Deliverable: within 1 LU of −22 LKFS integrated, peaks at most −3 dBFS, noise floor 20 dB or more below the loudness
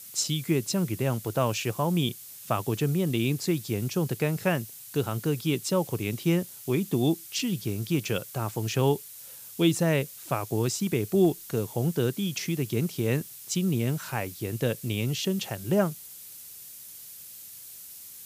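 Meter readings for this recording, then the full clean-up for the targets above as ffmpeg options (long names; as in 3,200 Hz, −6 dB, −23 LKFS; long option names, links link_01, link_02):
background noise floor −45 dBFS; target noise floor −48 dBFS; integrated loudness −28.0 LKFS; sample peak −11.0 dBFS; target loudness −22.0 LKFS
→ -af "afftdn=noise_reduction=6:noise_floor=-45"
-af "volume=6dB"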